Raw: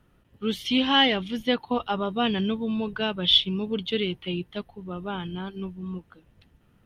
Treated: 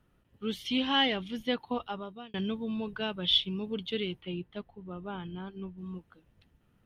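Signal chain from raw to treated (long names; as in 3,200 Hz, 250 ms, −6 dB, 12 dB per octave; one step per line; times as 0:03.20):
0:01.72–0:02.34: fade out linear
0:04.21–0:05.78: high-shelf EQ 3,900 Hz −11 dB
level −6.5 dB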